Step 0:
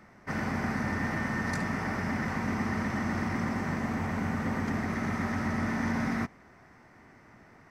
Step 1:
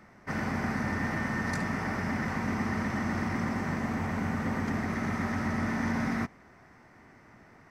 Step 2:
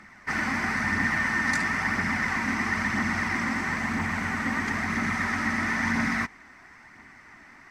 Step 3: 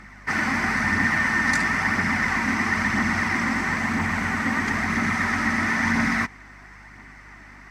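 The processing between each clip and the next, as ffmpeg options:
ffmpeg -i in.wav -af anull out.wav
ffmpeg -i in.wav -af "equalizer=frequency=125:width_type=o:width=1:gain=-5,equalizer=frequency=250:width_type=o:width=1:gain=3,equalizer=frequency=500:width_type=o:width=1:gain=-7,equalizer=frequency=1000:width_type=o:width=1:gain=4,equalizer=frequency=2000:width_type=o:width=1:gain=9,equalizer=frequency=4000:width_type=o:width=1:gain=5,equalizer=frequency=8000:width_type=o:width=1:gain=8,aphaser=in_gain=1:out_gain=1:delay=3.9:decay=0.32:speed=1:type=triangular" out.wav
ffmpeg -i in.wav -af "aeval=exprs='val(0)+0.00224*(sin(2*PI*50*n/s)+sin(2*PI*2*50*n/s)/2+sin(2*PI*3*50*n/s)/3+sin(2*PI*4*50*n/s)/4+sin(2*PI*5*50*n/s)/5)':channel_layout=same,volume=4dB" out.wav

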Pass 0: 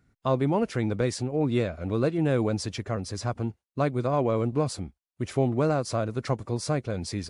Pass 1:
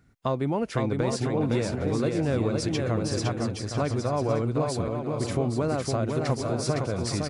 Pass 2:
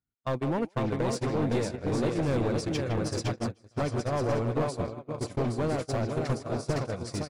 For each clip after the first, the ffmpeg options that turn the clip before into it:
ffmpeg -i in.wav -filter_complex "[0:a]acompressor=threshold=-30dB:ratio=2.5,asplit=2[link_01][link_02];[link_02]aecho=0:1:510|816|999.6|1110|1176:0.631|0.398|0.251|0.158|0.1[link_03];[link_01][link_03]amix=inputs=2:normalize=0,volume=4dB" out.wav
ffmpeg -i in.wav -filter_complex "[0:a]asplit=2[link_01][link_02];[link_02]adelay=160,highpass=300,lowpass=3400,asoftclip=type=hard:threshold=-21dB,volume=-8dB[link_03];[link_01][link_03]amix=inputs=2:normalize=0,agate=range=-30dB:threshold=-26dB:ratio=16:detection=peak,aeval=exprs='clip(val(0),-1,0.0531)':channel_layout=same" out.wav

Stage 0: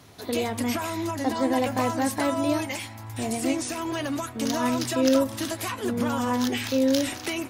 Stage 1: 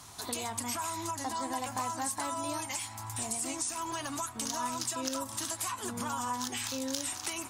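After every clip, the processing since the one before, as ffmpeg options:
ffmpeg -i in.wav -af "equalizer=frequency=125:width_type=o:width=1:gain=-4,equalizer=frequency=250:width_type=o:width=1:gain=-5,equalizer=frequency=500:width_type=o:width=1:gain=-10,equalizer=frequency=1000:width_type=o:width=1:gain=8,equalizer=frequency=2000:width_type=o:width=1:gain=-4,equalizer=frequency=8000:width_type=o:width=1:gain=12,acompressor=threshold=-36dB:ratio=2.5" out.wav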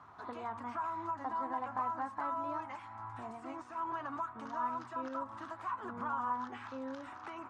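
ffmpeg -i in.wav -af "lowpass=frequency=1300:width_type=q:width=2.3,lowshelf=frequency=86:gain=-10.5,volume=-5.5dB" out.wav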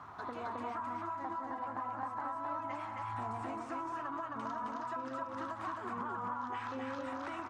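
ffmpeg -i in.wav -filter_complex "[0:a]acompressor=threshold=-45dB:ratio=6,asplit=2[link_01][link_02];[link_02]aecho=0:1:183.7|265.3:0.316|0.794[link_03];[link_01][link_03]amix=inputs=2:normalize=0,volume=6dB" out.wav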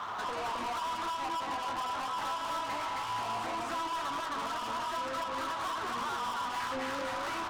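ffmpeg -i in.wav -filter_complex "[0:a]asplit=2[link_01][link_02];[link_02]highpass=frequency=720:poles=1,volume=28dB,asoftclip=type=tanh:threshold=-25dB[link_03];[link_01][link_03]amix=inputs=2:normalize=0,lowpass=frequency=1700:poles=1,volume=-6dB,flanger=delay=8.4:depth=3.3:regen=-46:speed=0.82:shape=triangular,crystalizer=i=3.5:c=0" out.wav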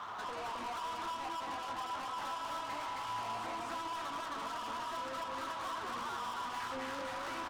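ffmpeg -i in.wav -af "aecho=1:1:553:0.335,volume=-5.5dB" out.wav

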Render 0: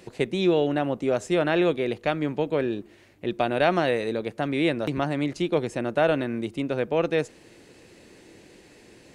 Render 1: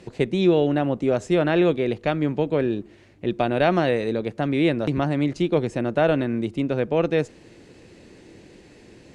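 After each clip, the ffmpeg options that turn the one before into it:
ffmpeg -i in.wav -af "lowpass=8200,lowshelf=frequency=340:gain=7" out.wav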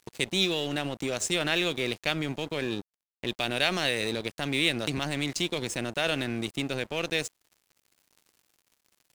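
ffmpeg -i in.wav -filter_complex "[0:a]acrossover=split=2200[link_01][link_02];[link_01]alimiter=limit=-19dB:level=0:latency=1:release=42[link_03];[link_03][link_02]amix=inputs=2:normalize=0,crystalizer=i=8.5:c=0,aeval=exprs='sgn(val(0))*max(abs(val(0))-0.0168,0)':channel_layout=same,volume=-3.5dB" out.wav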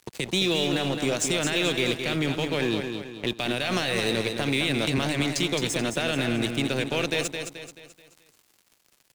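ffmpeg -i in.wav -filter_complex "[0:a]acrossover=split=160[link_01][link_02];[link_02]alimiter=limit=-19.5dB:level=0:latency=1:release=27[link_03];[link_01][link_03]amix=inputs=2:normalize=0,aecho=1:1:216|432|648|864|1080:0.473|0.203|0.0875|0.0376|0.0162,volume=5dB" out.wav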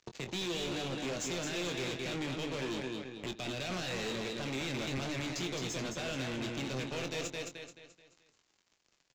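ffmpeg -i in.wav -filter_complex "[0:a]aresample=16000,asoftclip=type=hard:threshold=-29.5dB,aresample=44100,aeval=exprs='0.075*(cos(1*acos(clip(val(0)/0.075,-1,1)))-cos(1*PI/2))+0.00335*(cos(7*acos(clip(val(0)/0.075,-1,1)))-cos(7*PI/2))':channel_layout=same,asplit=2[link_01][link_02];[link_02]adelay=23,volume=-8.5dB[link_03];[link_01][link_03]amix=inputs=2:normalize=0,volume=-5.5dB" out.wav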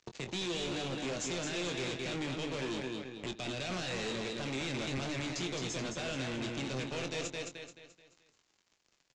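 ffmpeg -i in.wav -af "aresample=22050,aresample=44100" out.wav

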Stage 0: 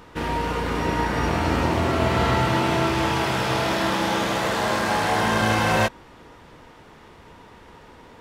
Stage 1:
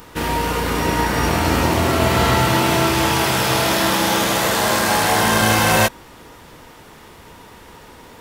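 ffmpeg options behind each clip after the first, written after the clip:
ffmpeg -i in.wav -af "aemphasis=mode=production:type=50fm,volume=4.5dB" out.wav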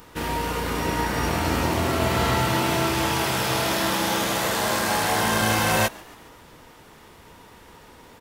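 ffmpeg -i in.wav -filter_complex "[0:a]asplit=5[link_01][link_02][link_03][link_04][link_05];[link_02]adelay=139,afreqshift=95,volume=-23.5dB[link_06];[link_03]adelay=278,afreqshift=190,volume=-28.7dB[link_07];[link_04]adelay=417,afreqshift=285,volume=-33.9dB[link_08];[link_05]adelay=556,afreqshift=380,volume=-39.1dB[link_09];[link_01][link_06][link_07][link_08][link_09]amix=inputs=5:normalize=0,volume=-6dB" out.wav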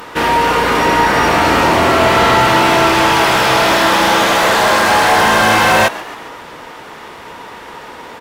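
ffmpeg -i in.wav -filter_complex "[0:a]asplit=2[link_01][link_02];[link_02]highpass=frequency=720:poles=1,volume=20dB,asoftclip=type=tanh:threshold=-7dB[link_03];[link_01][link_03]amix=inputs=2:normalize=0,lowpass=frequency=2000:poles=1,volume=-6dB,volume=6.5dB" out.wav

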